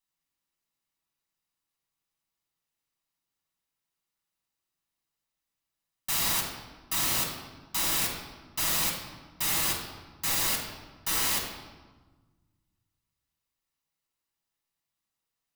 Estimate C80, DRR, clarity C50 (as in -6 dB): 6.5 dB, -1.5 dB, 4.0 dB